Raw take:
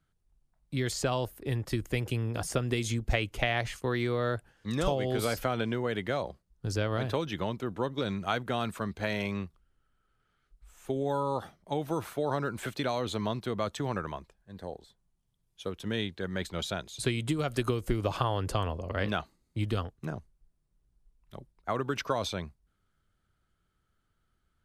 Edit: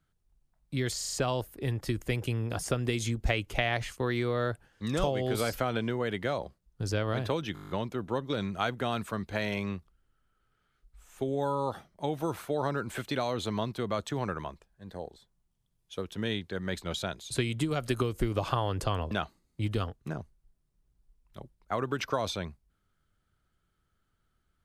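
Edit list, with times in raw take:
0:00.97: stutter 0.04 s, 5 plays
0:07.38: stutter 0.02 s, 9 plays
0:18.79–0:19.08: remove

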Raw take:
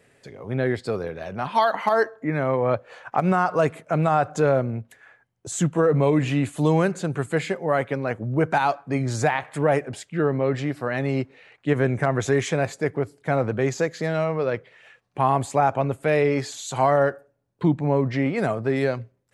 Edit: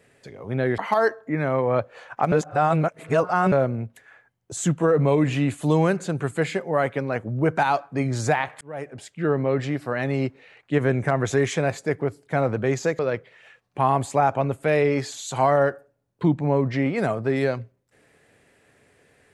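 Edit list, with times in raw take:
0:00.78–0:01.73: remove
0:03.27–0:04.47: reverse
0:09.56–0:10.26: fade in
0:13.94–0:14.39: remove

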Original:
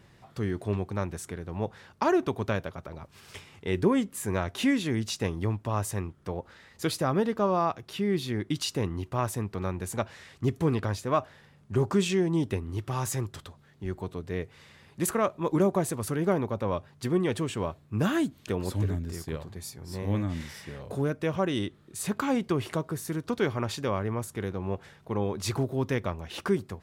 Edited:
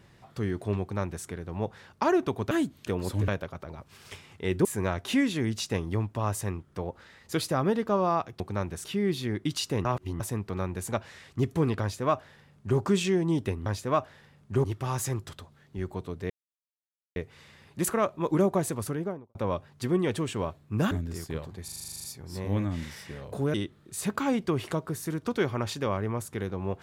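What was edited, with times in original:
0:00.81–0:01.26: duplicate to 0:07.90
0:03.88–0:04.15: remove
0:08.90–0:09.25: reverse
0:10.86–0:11.84: duplicate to 0:12.71
0:14.37: splice in silence 0.86 s
0:15.97–0:16.56: fade out and dull
0:18.12–0:18.89: move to 0:02.51
0:19.62: stutter 0.04 s, 11 plays
0:21.12–0:21.56: remove

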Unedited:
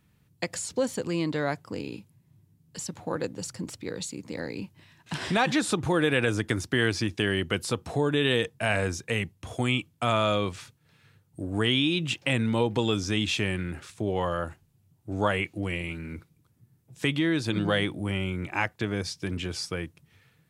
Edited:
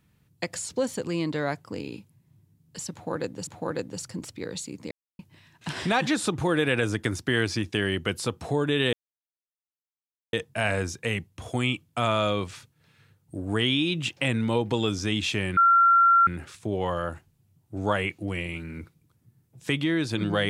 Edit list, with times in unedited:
0:02.92–0:03.47: repeat, 2 plays
0:04.36–0:04.64: silence
0:08.38: splice in silence 1.40 s
0:13.62: insert tone 1,370 Hz −14.5 dBFS 0.70 s

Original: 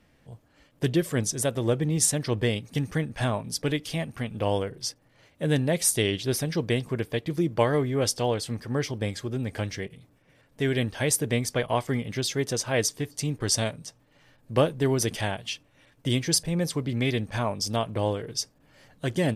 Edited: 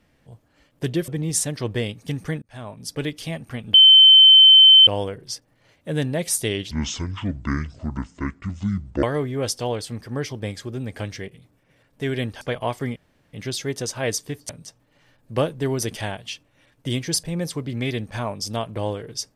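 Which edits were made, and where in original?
0:01.08–0:01.75: remove
0:03.09–0:03.69: fade in
0:04.41: insert tone 3,080 Hz −6.5 dBFS 1.13 s
0:06.25–0:07.62: play speed 59%
0:11.00–0:11.49: remove
0:12.04: splice in room tone 0.37 s
0:13.20–0:13.69: remove

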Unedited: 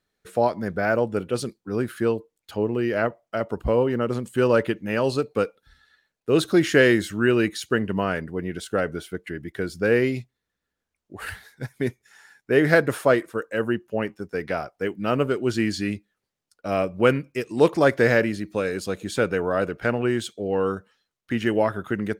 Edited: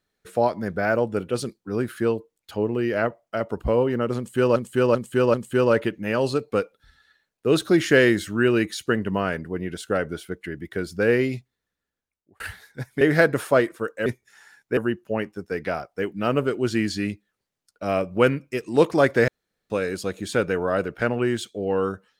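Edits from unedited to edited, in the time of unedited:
0:04.17–0:04.56: repeat, 4 plays
0:10.19–0:11.23: fade out equal-power
0:11.84–0:12.55: move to 0:13.60
0:18.11–0:18.53: fill with room tone

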